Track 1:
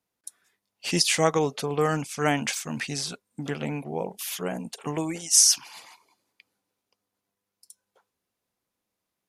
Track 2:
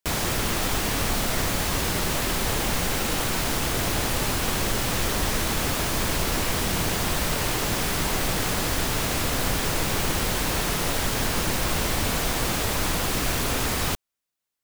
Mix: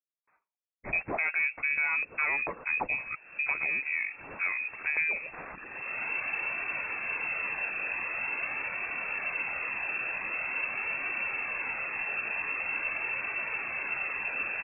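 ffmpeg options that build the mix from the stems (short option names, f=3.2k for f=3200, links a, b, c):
-filter_complex "[0:a]agate=range=-33dB:threshold=-45dB:ratio=3:detection=peak,adynamicequalizer=threshold=0.01:dfrequency=920:dqfactor=1.2:tfrequency=920:tqfactor=1.2:attack=5:release=100:ratio=0.375:range=3:mode=cutabove:tftype=bell,asoftclip=type=tanh:threshold=-19dB,volume=3dB,asplit=2[a][b];[1:a]flanger=delay=0.8:depth=1.8:regen=-31:speed=0.45:shape=triangular,adelay=1100,volume=-5dB,afade=t=in:st=3.45:d=0.7:silence=0.298538[c];[b]apad=whole_len=693765[d];[c][d]sidechaincompress=threshold=-43dB:ratio=5:attack=7.3:release=248[e];[a][e]amix=inputs=2:normalize=0,lowpass=f=2.3k:t=q:w=0.5098,lowpass=f=2.3k:t=q:w=0.6013,lowpass=f=2.3k:t=q:w=0.9,lowpass=f=2.3k:t=q:w=2.563,afreqshift=-2700,alimiter=limit=-19.5dB:level=0:latency=1:release=298"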